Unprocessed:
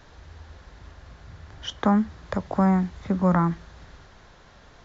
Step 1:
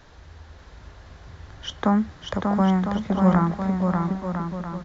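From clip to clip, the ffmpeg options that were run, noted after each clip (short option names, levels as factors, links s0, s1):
-af "aecho=1:1:590|1003|1292|1494|1636:0.631|0.398|0.251|0.158|0.1"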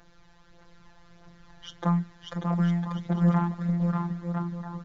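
-af "aphaser=in_gain=1:out_gain=1:delay=1.3:decay=0.4:speed=1.6:type=triangular,afftfilt=real='hypot(re,im)*cos(PI*b)':imag='0':win_size=1024:overlap=0.75,aeval=exprs='0.501*(cos(1*acos(clip(val(0)/0.501,-1,1)))-cos(1*PI/2))+0.00891*(cos(8*acos(clip(val(0)/0.501,-1,1)))-cos(8*PI/2))':c=same,volume=0.562"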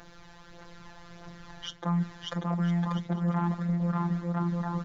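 -af "lowshelf=f=110:g=-5.5,areverse,acompressor=threshold=0.02:ratio=5,areverse,volume=2.51"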